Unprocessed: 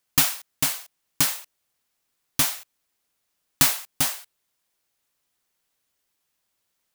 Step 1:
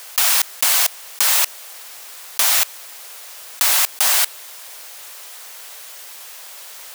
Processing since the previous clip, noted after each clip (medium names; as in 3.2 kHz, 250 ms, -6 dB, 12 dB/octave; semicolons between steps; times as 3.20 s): high-pass 480 Hz 24 dB/octave; level flattener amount 100%; trim -1 dB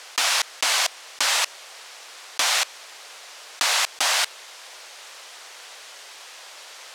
low-pass 6 kHz 12 dB/octave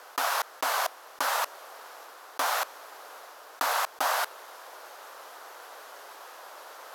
high-order bell 4.3 kHz -14.5 dB 2.6 oct; reverse; upward compressor, threshold -41 dBFS; reverse; trim +1 dB